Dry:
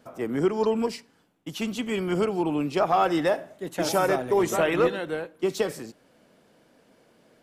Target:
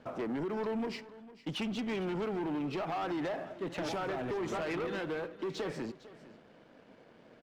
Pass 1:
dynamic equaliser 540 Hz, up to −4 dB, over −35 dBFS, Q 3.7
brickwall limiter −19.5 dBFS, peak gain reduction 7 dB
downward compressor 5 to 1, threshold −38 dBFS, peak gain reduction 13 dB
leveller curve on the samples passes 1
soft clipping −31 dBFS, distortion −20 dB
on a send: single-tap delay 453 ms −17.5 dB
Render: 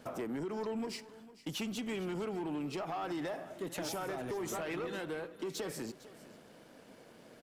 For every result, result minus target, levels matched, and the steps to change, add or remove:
downward compressor: peak gain reduction +5 dB; 4,000 Hz band +2.0 dB
change: downward compressor 5 to 1, threshold −31.5 dBFS, peak gain reduction 8 dB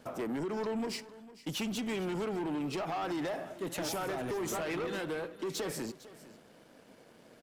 4,000 Hz band +2.5 dB
add after dynamic equaliser: low-pass filter 3,200 Hz 12 dB per octave

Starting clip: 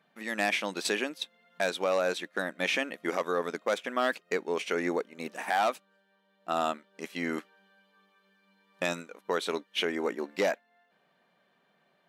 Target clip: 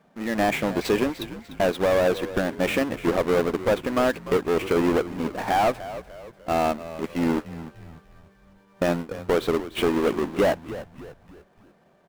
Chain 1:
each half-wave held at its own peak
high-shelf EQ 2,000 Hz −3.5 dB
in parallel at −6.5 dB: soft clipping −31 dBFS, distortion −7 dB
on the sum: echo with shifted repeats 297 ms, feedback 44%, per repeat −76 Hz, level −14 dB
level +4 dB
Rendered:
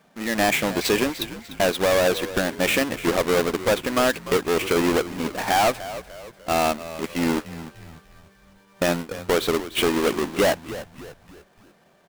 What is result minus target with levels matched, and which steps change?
4,000 Hz band +6.0 dB
change: high-shelf EQ 2,000 Hz −14 dB

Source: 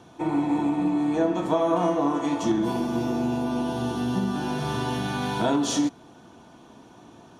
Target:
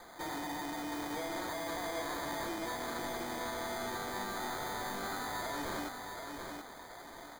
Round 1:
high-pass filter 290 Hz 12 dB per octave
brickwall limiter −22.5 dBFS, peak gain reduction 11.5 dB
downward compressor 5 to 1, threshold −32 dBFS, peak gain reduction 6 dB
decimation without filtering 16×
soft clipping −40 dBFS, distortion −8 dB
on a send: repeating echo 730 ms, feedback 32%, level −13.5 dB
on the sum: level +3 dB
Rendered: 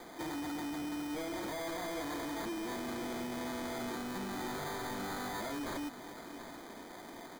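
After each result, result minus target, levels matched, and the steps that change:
echo-to-direct −8 dB; 250 Hz band +4.5 dB
change: repeating echo 730 ms, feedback 32%, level −5.5 dB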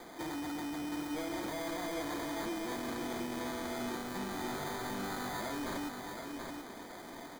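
250 Hz band +4.5 dB
change: high-pass filter 640 Hz 12 dB per octave

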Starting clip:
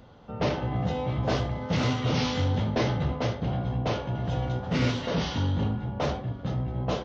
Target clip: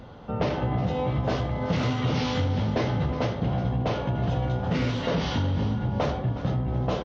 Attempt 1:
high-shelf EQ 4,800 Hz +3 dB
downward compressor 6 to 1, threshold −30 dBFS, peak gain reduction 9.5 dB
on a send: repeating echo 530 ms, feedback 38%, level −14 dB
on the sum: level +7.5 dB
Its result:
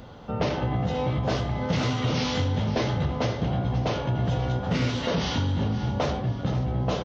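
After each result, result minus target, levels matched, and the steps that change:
echo 168 ms late; 8,000 Hz band +5.5 dB
change: repeating echo 362 ms, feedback 38%, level −14 dB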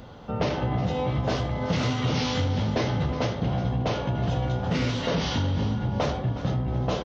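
8,000 Hz band +5.5 dB
change: high-shelf EQ 4,800 Hz −7 dB

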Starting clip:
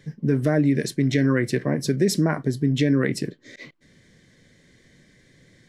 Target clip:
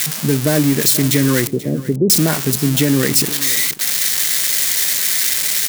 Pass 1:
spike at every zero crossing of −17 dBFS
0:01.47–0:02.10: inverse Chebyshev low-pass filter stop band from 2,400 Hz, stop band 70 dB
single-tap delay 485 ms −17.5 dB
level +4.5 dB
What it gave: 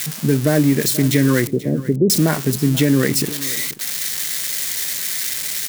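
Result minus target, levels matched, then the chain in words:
spike at every zero crossing: distortion −6 dB
spike at every zero crossing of −10.5 dBFS
0:01.47–0:02.10: inverse Chebyshev low-pass filter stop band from 2,400 Hz, stop band 70 dB
single-tap delay 485 ms −17.5 dB
level +4.5 dB

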